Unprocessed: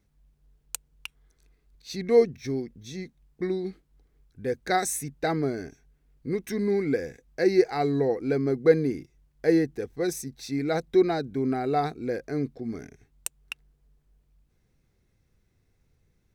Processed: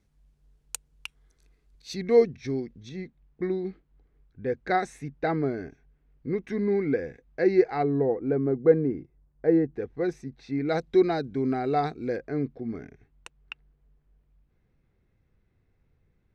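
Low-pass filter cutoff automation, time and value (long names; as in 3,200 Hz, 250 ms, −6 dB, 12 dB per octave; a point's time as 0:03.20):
11,000 Hz
from 0:01.94 4,700 Hz
from 0:02.89 2,600 Hz
from 0:07.83 1,200 Hz
from 0:09.74 2,200 Hz
from 0:10.69 5,200 Hz
from 0:12.17 2,600 Hz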